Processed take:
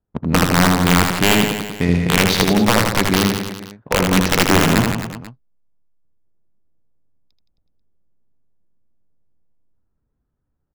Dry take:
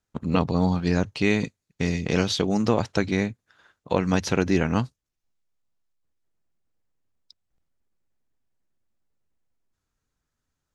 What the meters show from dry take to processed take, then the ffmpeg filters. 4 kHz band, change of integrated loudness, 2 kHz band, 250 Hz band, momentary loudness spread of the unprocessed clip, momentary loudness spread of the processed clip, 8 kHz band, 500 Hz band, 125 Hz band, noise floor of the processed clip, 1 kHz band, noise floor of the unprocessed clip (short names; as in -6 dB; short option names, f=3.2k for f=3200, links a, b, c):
+14.0 dB, +8.5 dB, +12.0 dB, +7.0 dB, 5 LU, 10 LU, +15.5 dB, +5.5 dB, +7.5 dB, -73 dBFS, +11.5 dB, -83 dBFS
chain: -af "adynamicsmooth=sensitivity=4.5:basefreq=800,aeval=exprs='(mod(3.76*val(0)+1,2)-1)/3.76':c=same,aecho=1:1:80|168|264.8|371.3|488.4:0.631|0.398|0.251|0.158|0.1,volume=6.5dB"